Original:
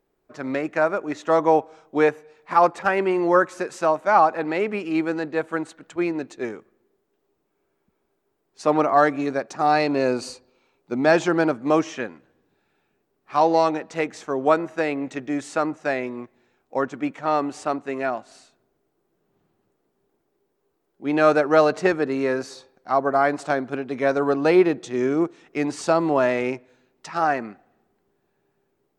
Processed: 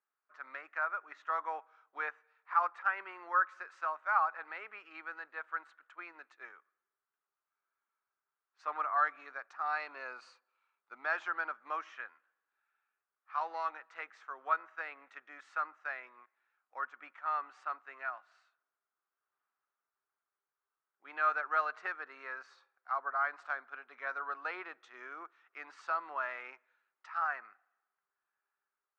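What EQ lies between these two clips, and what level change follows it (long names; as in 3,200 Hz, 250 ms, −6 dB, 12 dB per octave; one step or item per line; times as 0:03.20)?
four-pole ladder band-pass 1,500 Hz, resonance 55%
−2.0 dB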